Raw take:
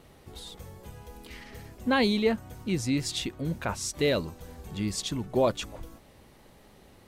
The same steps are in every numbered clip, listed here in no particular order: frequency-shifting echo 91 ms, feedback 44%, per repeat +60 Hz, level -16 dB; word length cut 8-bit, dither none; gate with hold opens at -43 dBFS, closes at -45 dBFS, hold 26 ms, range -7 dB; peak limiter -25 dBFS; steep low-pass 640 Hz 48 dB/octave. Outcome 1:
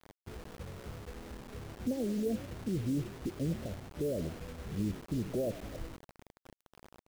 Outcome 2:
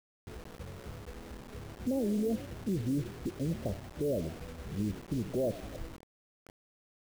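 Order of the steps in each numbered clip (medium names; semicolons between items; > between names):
peak limiter > steep low-pass > frequency-shifting echo > word length cut > gate with hold; gate with hold > steep low-pass > peak limiter > frequency-shifting echo > word length cut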